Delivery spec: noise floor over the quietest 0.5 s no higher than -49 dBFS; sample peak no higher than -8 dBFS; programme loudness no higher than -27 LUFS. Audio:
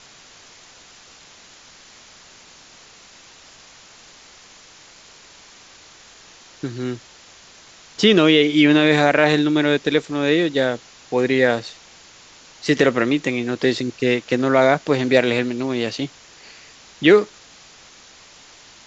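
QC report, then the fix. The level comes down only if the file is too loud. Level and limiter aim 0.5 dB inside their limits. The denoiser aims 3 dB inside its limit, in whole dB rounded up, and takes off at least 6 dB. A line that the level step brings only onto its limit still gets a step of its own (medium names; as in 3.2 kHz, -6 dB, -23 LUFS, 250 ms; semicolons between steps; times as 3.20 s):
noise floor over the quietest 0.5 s -47 dBFS: fail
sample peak -2.0 dBFS: fail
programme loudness -18.0 LUFS: fail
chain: trim -9.5 dB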